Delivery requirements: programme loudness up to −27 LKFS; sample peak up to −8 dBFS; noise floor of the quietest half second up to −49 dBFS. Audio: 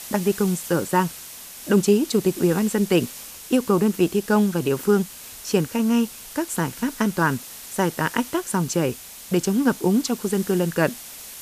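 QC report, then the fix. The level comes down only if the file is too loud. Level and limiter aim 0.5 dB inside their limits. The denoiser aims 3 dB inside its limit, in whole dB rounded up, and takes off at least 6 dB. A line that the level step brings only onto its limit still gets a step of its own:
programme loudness −22.5 LKFS: out of spec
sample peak −6.0 dBFS: out of spec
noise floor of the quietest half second −39 dBFS: out of spec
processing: broadband denoise 8 dB, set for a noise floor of −39 dBFS
level −5 dB

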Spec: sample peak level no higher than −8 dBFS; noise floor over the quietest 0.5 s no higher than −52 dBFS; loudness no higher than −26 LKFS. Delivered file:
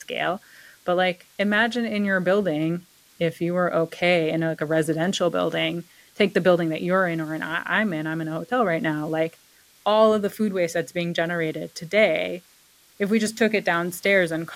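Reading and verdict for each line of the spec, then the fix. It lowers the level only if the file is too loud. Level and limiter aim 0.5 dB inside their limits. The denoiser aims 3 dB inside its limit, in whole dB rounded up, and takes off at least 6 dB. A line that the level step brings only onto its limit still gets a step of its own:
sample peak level −6.5 dBFS: out of spec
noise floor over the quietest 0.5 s −56 dBFS: in spec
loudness −23.0 LKFS: out of spec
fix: level −3.5 dB

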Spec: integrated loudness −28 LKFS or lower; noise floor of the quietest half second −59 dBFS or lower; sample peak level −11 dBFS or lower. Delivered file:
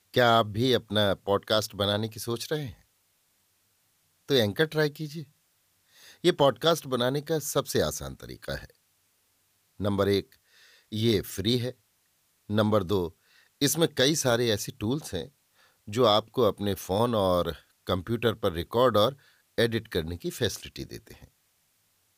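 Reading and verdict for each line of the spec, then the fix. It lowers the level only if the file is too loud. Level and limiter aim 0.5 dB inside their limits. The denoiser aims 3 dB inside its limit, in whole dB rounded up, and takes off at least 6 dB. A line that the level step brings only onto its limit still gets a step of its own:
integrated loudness −27.0 LKFS: out of spec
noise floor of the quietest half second −70 dBFS: in spec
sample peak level −9.5 dBFS: out of spec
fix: level −1.5 dB
brickwall limiter −11.5 dBFS

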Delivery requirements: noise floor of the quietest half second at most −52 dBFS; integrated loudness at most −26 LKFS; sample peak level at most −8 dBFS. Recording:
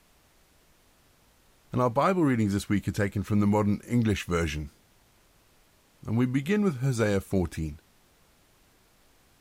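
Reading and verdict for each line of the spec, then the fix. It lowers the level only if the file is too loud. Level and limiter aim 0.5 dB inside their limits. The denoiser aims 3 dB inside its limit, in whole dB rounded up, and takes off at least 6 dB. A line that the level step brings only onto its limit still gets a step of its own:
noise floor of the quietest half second −62 dBFS: in spec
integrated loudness −27.0 LKFS: in spec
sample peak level −11.5 dBFS: in spec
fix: no processing needed

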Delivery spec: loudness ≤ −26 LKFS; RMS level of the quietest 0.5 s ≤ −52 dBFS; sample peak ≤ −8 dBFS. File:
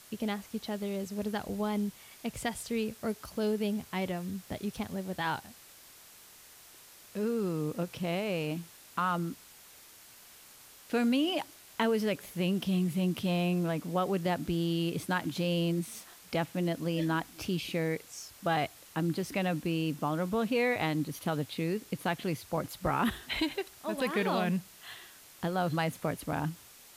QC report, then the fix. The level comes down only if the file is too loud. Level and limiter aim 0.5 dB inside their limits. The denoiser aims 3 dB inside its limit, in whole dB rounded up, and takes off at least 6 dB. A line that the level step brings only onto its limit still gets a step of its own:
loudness −33.0 LKFS: in spec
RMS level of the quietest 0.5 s −55 dBFS: in spec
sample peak −17.0 dBFS: in spec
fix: no processing needed

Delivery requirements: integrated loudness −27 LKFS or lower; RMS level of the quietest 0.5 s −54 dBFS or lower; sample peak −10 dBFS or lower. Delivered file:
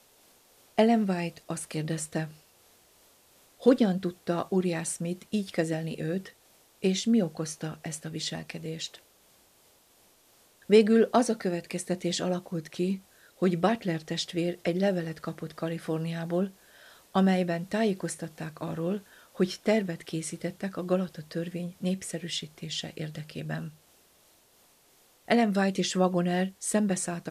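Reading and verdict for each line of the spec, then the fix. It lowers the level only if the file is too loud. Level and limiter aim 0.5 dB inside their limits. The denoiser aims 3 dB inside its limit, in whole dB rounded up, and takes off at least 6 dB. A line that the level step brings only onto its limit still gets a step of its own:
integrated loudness −29.5 LKFS: in spec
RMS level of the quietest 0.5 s −62 dBFS: in spec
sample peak −8.5 dBFS: out of spec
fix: brickwall limiter −10.5 dBFS

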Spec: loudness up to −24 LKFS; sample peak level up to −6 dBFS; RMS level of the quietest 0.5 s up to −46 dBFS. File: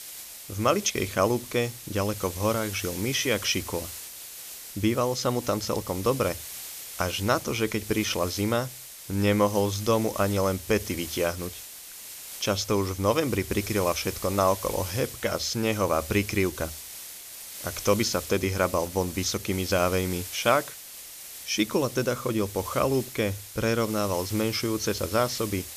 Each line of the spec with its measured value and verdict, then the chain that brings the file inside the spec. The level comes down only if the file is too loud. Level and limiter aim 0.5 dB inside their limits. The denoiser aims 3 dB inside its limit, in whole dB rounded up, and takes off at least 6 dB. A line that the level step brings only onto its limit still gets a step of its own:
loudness −27.0 LKFS: in spec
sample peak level −8.0 dBFS: in spec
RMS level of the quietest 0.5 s −43 dBFS: out of spec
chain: broadband denoise 6 dB, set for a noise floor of −43 dBFS

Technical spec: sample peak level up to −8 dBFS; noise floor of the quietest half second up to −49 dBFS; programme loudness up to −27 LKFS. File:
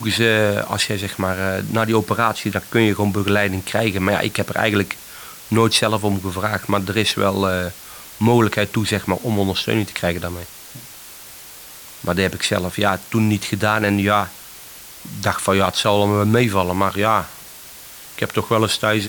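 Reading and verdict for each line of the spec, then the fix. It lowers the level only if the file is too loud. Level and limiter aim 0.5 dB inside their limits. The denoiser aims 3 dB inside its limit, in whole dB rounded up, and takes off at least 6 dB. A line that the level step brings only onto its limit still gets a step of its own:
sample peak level −2.5 dBFS: out of spec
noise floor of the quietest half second −39 dBFS: out of spec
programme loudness −19.0 LKFS: out of spec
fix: broadband denoise 6 dB, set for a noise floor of −39 dBFS
level −8.5 dB

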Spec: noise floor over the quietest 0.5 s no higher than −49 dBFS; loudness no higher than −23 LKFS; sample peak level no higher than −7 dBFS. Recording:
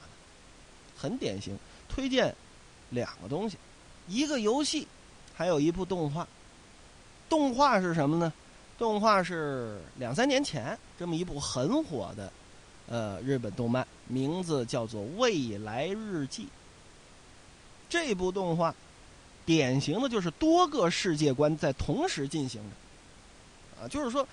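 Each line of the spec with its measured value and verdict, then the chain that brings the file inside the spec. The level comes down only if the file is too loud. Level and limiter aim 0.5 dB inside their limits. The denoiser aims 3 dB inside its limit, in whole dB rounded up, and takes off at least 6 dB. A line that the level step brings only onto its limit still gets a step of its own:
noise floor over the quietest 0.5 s −54 dBFS: in spec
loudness −30.5 LKFS: in spec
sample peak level −12.0 dBFS: in spec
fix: no processing needed

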